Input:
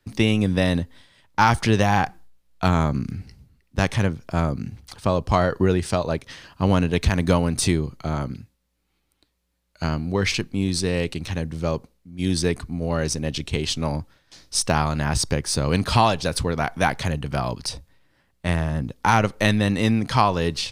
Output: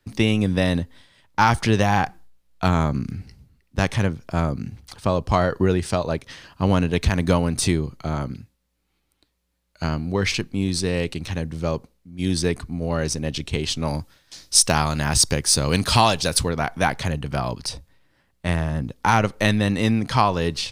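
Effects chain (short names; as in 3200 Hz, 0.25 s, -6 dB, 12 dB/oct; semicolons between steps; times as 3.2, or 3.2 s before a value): 13.87–16.49 high shelf 3300 Hz +9.5 dB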